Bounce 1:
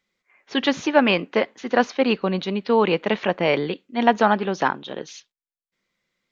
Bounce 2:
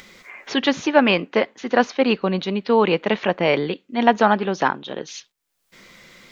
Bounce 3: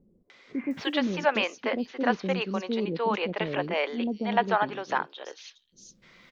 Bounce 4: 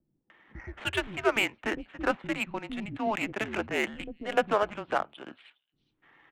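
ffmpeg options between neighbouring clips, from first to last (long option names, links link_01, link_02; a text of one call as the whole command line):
ffmpeg -i in.wav -af "acompressor=mode=upward:threshold=-26dB:ratio=2.5,volume=1.5dB" out.wav
ffmpeg -i in.wav -filter_complex "[0:a]acrossover=split=420|5700[link_01][link_02][link_03];[link_02]adelay=300[link_04];[link_03]adelay=710[link_05];[link_01][link_04][link_05]amix=inputs=3:normalize=0,volume=-7dB" out.wav
ffmpeg -i in.wav -af "highpass=frequency=230:width_type=q:width=0.5412,highpass=frequency=230:width_type=q:width=1.307,lowpass=frequency=3500:width_type=q:width=0.5176,lowpass=frequency=3500:width_type=q:width=0.7071,lowpass=frequency=3500:width_type=q:width=1.932,afreqshift=-210,aemphasis=mode=production:type=bsi,adynamicsmooth=sensitivity=5:basefreq=1900" out.wav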